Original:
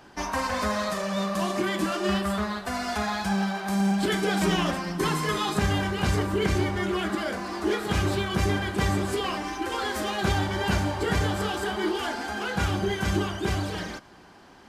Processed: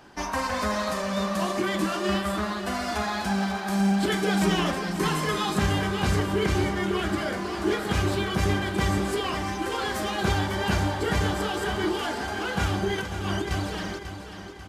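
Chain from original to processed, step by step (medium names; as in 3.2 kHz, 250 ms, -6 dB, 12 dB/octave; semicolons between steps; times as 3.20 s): 12.98–13.51 s: compressor with a negative ratio -32 dBFS, ratio -1; on a send: feedback delay 542 ms, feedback 51%, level -10 dB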